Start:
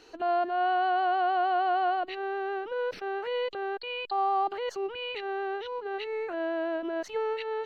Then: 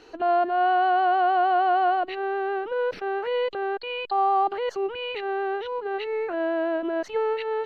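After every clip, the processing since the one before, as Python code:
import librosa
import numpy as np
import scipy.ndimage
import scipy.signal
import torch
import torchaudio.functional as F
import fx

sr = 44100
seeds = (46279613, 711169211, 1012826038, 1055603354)

y = fx.high_shelf(x, sr, hz=4100.0, db=-9.5)
y = F.gain(torch.from_numpy(y), 5.5).numpy()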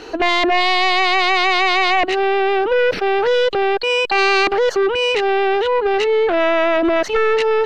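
y = fx.fold_sine(x, sr, drive_db=12, ceiling_db=-12.5)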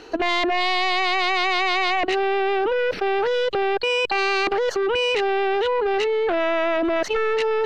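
y = fx.level_steps(x, sr, step_db=11)
y = F.gain(torch.from_numpy(y), 1.0).numpy()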